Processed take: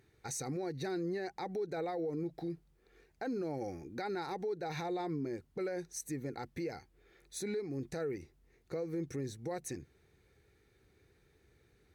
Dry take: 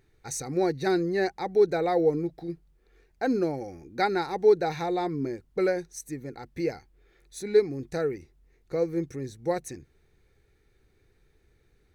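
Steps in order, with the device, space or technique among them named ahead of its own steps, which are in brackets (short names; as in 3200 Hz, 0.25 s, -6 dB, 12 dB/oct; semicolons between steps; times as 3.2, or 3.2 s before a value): podcast mastering chain (HPF 67 Hz 12 dB/oct; compressor 2.5:1, threshold -30 dBFS, peak gain reduction 10.5 dB; limiter -30 dBFS, peak gain reduction 11 dB; MP3 112 kbps 44100 Hz)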